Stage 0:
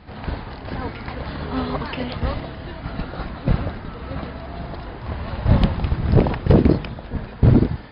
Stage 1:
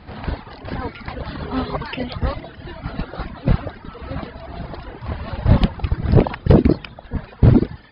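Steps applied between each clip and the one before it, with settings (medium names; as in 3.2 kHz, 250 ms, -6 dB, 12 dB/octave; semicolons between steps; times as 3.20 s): reverb removal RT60 1.1 s; trim +2.5 dB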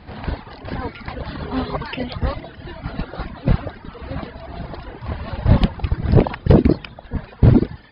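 band-stop 1.3 kHz, Q 26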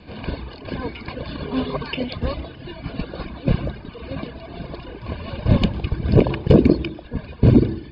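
reverberation RT60 0.60 s, pre-delay 98 ms, DRR 18 dB; trim -6 dB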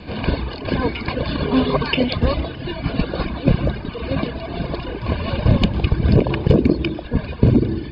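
compression 5:1, threshold -19 dBFS, peak gain reduction 11.5 dB; trim +8 dB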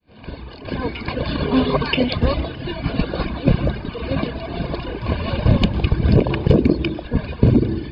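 fade-in on the opening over 1.31 s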